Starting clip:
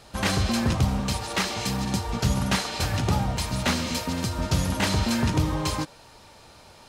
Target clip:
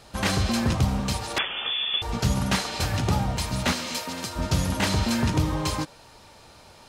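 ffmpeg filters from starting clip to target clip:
-filter_complex "[0:a]asettb=1/sr,asplit=3[s0][s1][s2];[s0]atrim=end=1.384[s3];[s1]atrim=start=1.38:end=2.02,asetpts=PTS-STARTPTS,afade=t=in:d=0.004:c=qsin,afade=t=out:st=0.636:d=0.004:c=qsin,lowpass=f=3100:t=q:w=0.5098,lowpass=f=3100:t=q:w=0.6013,lowpass=f=3100:t=q:w=0.9,lowpass=f=3100:t=q:w=2.563,afreqshift=-3600[s4];[s2]atrim=start=2.016[s5];[s3][s4]acrossfade=d=0.004:c1=hsin:c2=qsin[s6];[s6][s5]acrossfade=d=0.004:c1=qsin:c2=hsin,asettb=1/sr,asplit=3[s7][s8][s9];[s7]atrim=end=3.724[s10];[s8]atrim=start=3.72:end=4.36,asetpts=PTS-STARTPTS,afade=t=in:d=0.004:c=qsin,afade=t=out:st=0.636:d=0.004:c=qsin,highpass=f=490:p=1[s11];[s9]atrim=start=4.356[s12];[s10][s11]acrossfade=d=0.004:c1=hsin:c2=qsin[s13];[s13][s12]acrossfade=d=0.004:c1=qsin:c2=hsin"

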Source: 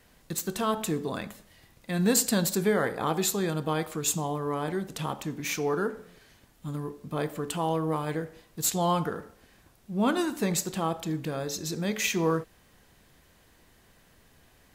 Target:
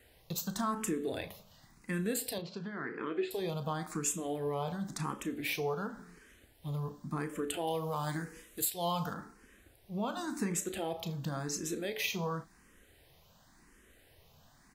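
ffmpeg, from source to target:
-filter_complex "[0:a]asettb=1/sr,asplit=3[s0][s1][s2];[s0]atrim=end=7.674[s3];[s1]atrim=start=7.67:end=9.14,asetpts=PTS-STARTPTS,afade=t=in:d=0.004:c=qsin,afade=t=out:st=1.466:d=0.004:c=qsin,highshelf=f=2900:g=11[s4];[s2]atrim=start=9.136[s5];[s3][s4]acrossfade=d=0.004:c1=hsin:c2=qsin[s6];[s6][s5]acrossfade=d=0.004:c1=qsin:c2=hsin,acompressor=threshold=0.0398:ratio=6,asettb=1/sr,asplit=3[s7][s8][s9];[s7]atrim=end=2.384[s10];[s8]atrim=start=2.38:end=3.31,asetpts=PTS-STARTPTS,afade=t=in:d=0.004:c=qsin,afade=t=out:st=0.926:d=0.004:c=qsin,highpass=140,equalizer=f=190:t=q:w=4:g=-8,equalizer=f=370:t=q:w=4:g=4,equalizer=f=570:t=q:w=4:g=-6,equalizer=f=820:t=q:w=4:g=-10,equalizer=f=1200:t=q:w=4:g=-4,equalizer=f=3700:t=q:w=4:g=-9,lowpass=f=3900:w=0.5412,lowpass=f=3900:w=1.3066[s11];[s9]atrim=start=3.306[s12];[s10][s11]acrossfade=d=0.004:c1=hsin:c2=qsin[s13];[s13][s12]acrossfade=d=0.004:c1=qsin:c2=hsin,asplit=2[s14][s15];[s15]adelay=35,volume=0.237[s16];[s14][s16]amix=inputs=2:normalize=0,asplit=2[s17][s18];[s18]afreqshift=0.93[s19];[s17][s19]amix=inputs=2:normalize=1"

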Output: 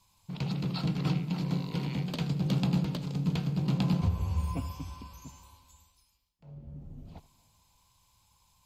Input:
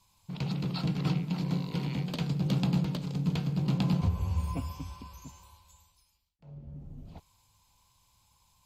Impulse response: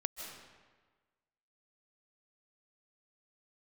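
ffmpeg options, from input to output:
-filter_complex "[0:a]asplit=2[s0][s1];[1:a]atrim=start_sample=2205,adelay=80[s2];[s1][s2]afir=irnorm=-1:irlink=0,volume=0.126[s3];[s0][s3]amix=inputs=2:normalize=0"

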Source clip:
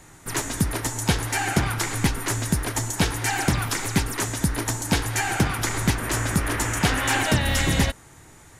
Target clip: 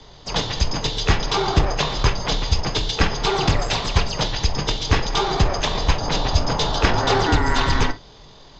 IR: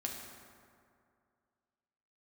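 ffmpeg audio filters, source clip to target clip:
-filter_complex "[0:a]afreqshift=-44,asetrate=22696,aresample=44100,atempo=1.94306,asplit=2[s0][s1];[1:a]atrim=start_sample=2205,atrim=end_sample=3528,asetrate=52920,aresample=44100[s2];[s1][s2]afir=irnorm=-1:irlink=0,volume=1.12[s3];[s0][s3]amix=inputs=2:normalize=0"

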